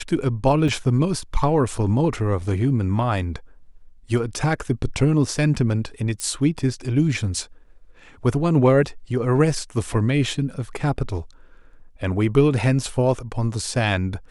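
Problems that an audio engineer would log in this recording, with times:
0:00.68: drop-out 3.1 ms
0:06.20: click −15 dBFS

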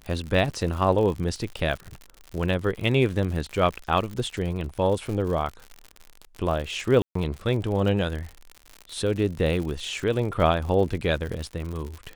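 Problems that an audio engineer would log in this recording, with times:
surface crackle 90 per second −31 dBFS
0:07.02–0:07.15: drop-out 134 ms

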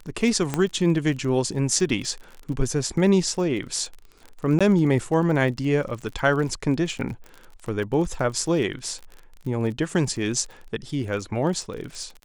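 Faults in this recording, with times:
surface crackle 34 per second −32 dBFS
0:00.54: click −10 dBFS
0:04.59–0:04.61: drop-out 16 ms

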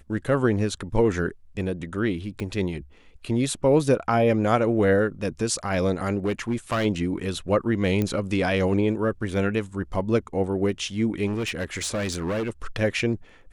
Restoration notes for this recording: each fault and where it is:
0:02.40: click −20 dBFS
0:06.25–0:06.86: clipping −20 dBFS
0:08.02: click −13 dBFS
0:11.26–0:12.50: clipping −23.5 dBFS

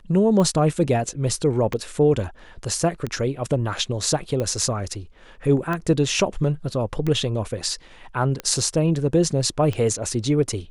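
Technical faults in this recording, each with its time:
scratch tick 45 rpm −14 dBFS

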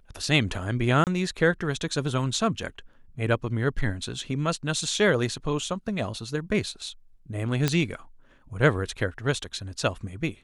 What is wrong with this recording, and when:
0:01.04–0:01.07: drop-out 28 ms
0:07.68: click −8 dBFS

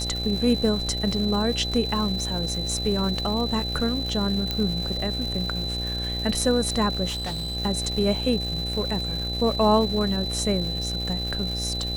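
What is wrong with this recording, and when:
mains buzz 60 Hz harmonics 14 −31 dBFS
surface crackle 440 per second −32 dBFS
whistle 4,000 Hz −29 dBFS
0:04.51: click −11 dBFS
0:07.08–0:07.57: clipping −26.5 dBFS

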